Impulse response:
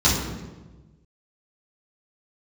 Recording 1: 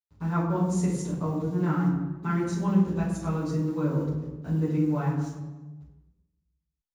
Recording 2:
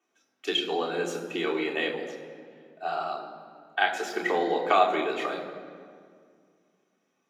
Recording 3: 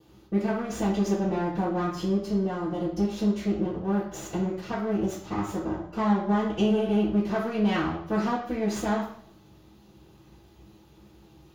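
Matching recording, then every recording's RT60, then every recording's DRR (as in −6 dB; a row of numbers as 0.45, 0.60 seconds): 1; 1.2, 2.1, 0.60 seconds; −9.0, −2.0, −12.5 decibels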